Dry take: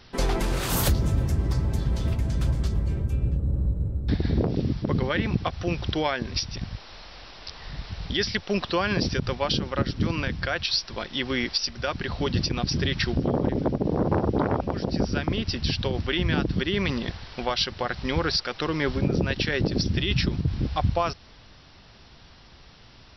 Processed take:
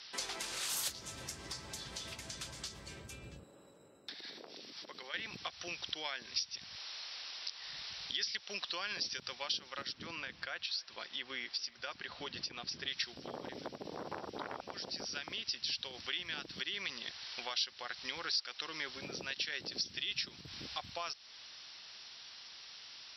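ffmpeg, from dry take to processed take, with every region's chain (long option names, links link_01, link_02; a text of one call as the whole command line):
ffmpeg -i in.wav -filter_complex "[0:a]asettb=1/sr,asplit=3[link_01][link_02][link_03];[link_01]atrim=end=3.434[link_04];[link_02]atrim=start=3.43:end=5.14,asetpts=PTS-STARTPTS,afade=type=in:duration=0.004:curve=qsin,afade=type=out:start_time=1.706:duration=0.004:curve=qsin,highpass=320,acompressor=threshold=-39dB:ratio=2.5:attack=3.2:release=140:knee=1:detection=peak[link_05];[link_03]atrim=start=5.136[link_06];[link_04][link_05]acrossfade=duration=0.004:curve1=hsin:curve2=qsin[link_07];[link_07][link_06]acrossfade=duration=0.004:curve1=qsin:curve2=hsin,asettb=1/sr,asplit=3[link_08][link_09][link_10];[link_08]atrim=end=9.924[link_11];[link_09]atrim=start=9.92:end=12.88,asetpts=PTS-STARTPTS,afade=type=in:duration=0.004:curve=qsin,afade=type=out:start_time=2.956:duration=0.004:curve=qsin,lowpass=frequency=1800:poles=1,aecho=1:1:275:0.0668,atrim=end_sample=130536[link_12];[link_10]atrim=start=12.876[link_13];[link_11][link_12]acrossfade=duration=0.004:curve1=hsin:curve2=qsin[link_14];[link_14][link_13]acrossfade=duration=0.004:curve1=qsin:curve2=hsin,lowpass=6800,aderivative,acompressor=threshold=-54dB:ratio=2,volume=10dB" out.wav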